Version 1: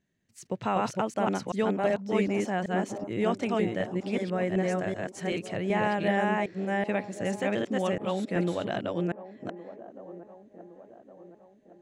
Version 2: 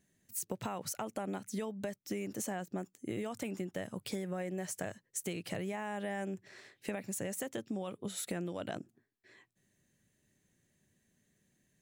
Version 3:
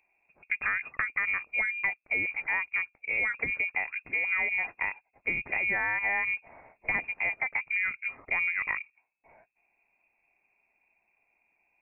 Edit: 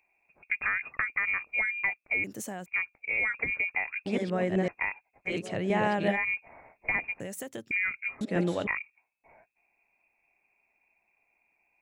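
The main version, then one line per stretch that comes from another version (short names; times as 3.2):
3
2.24–2.66 from 2
4.06–4.68 from 1
5.3–6.14 from 1, crossfade 0.10 s
7.2–7.71 from 2
8.21–8.67 from 1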